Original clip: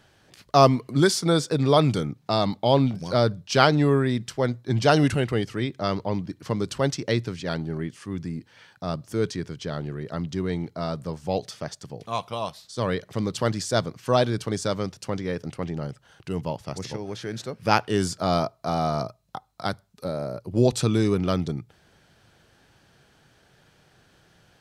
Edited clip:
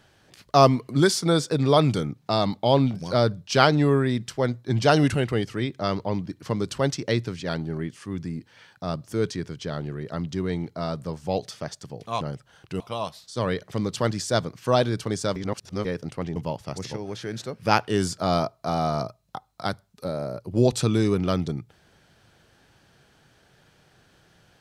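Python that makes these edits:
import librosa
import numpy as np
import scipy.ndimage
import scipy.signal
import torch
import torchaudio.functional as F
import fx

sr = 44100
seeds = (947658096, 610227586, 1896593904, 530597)

y = fx.edit(x, sr, fx.reverse_span(start_s=14.77, length_s=0.49),
    fx.move(start_s=15.77, length_s=0.59, to_s=12.21), tone=tone)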